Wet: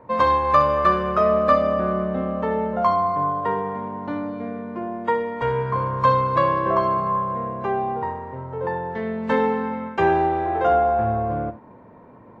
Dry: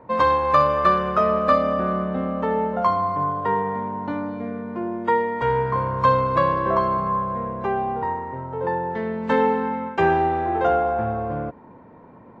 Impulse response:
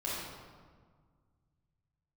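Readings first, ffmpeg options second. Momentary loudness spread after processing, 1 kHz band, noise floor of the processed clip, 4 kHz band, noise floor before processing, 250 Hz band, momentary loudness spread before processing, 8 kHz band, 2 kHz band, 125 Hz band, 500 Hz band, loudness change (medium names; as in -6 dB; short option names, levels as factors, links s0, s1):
11 LU, 0.0 dB, -46 dBFS, -0.5 dB, -47 dBFS, -0.5 dB, 10 LU, no reading, -1.0 dB, +0.5 dB, +0.5 dB, +0.5 dB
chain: -filter_complex "[0:a]asplit=2[s0][s1];[1:a]atrim=start_sample=2205,atrim=end_sample=3969[s2];[s1][s2]afir=irnorm=-1:irlink=0,volume=0.316[s3];[s0][s3]amix=inputs=2:normalize=0,volume=0.794"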